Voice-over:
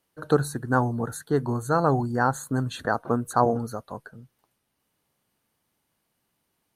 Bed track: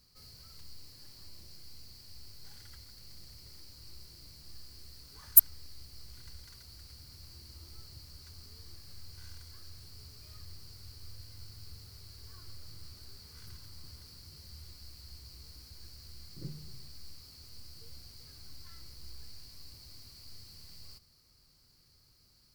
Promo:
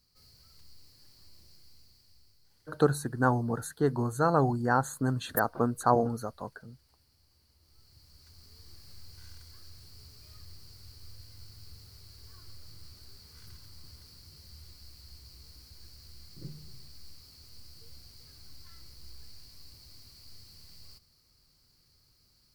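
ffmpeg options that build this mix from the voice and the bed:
-filter_complex "[0:a]adelay=2500,volume=-3dB[a];[1:a]volume=10dB,afade=t=out:st=1.49:d=0.98:silence=0.281838,afade=t=in:st=7.6:d=1.25:silence=0.16788[b];[a][b]amix=inputs=2:normalize=0"

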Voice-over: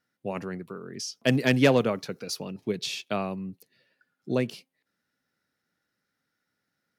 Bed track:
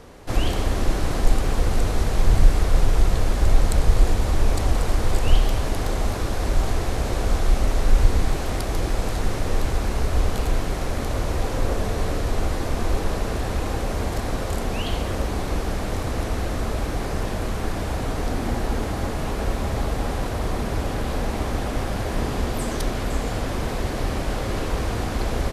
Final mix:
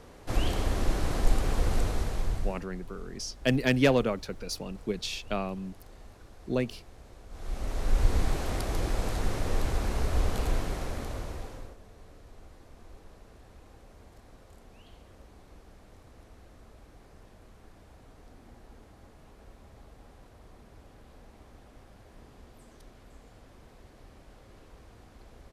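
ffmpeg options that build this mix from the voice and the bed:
-filter_complex "[0:a]adelay=2200,volume=-2.5dB[a];[1:a]volume=15dB,afade=t=out:st=1.77:d=0.86:silence=0.0891251,afade=t=in:st=7.3:d=0.88:silence=0.0891251,afade=t=out:st=10.51:d=1.25:silence=0.0794328[b];[a][b]amix=inputs=2:normalize=0"

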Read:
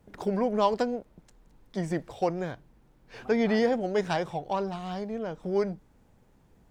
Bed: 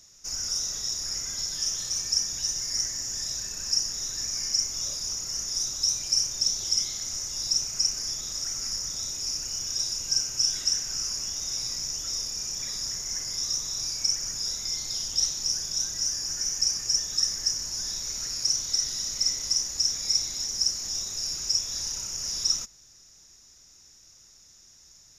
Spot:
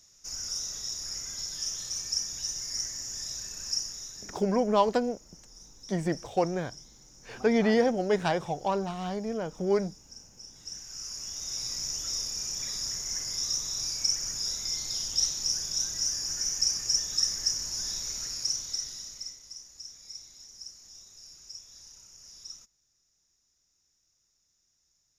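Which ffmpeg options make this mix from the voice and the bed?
-filter_complex "[0:a]adelay=4150,volume=1dB[a];[1:a]volume=17dB,afade=t=out:st=3.72:d=0.75:silence=0.11885,afade=t=in:st=10.54:d=1.35:silence=0.0794328,afade=t=out:st=17.98:d=1.42:silence=0.133352[b];[a][b]amix=inputs=2:normalize=0"

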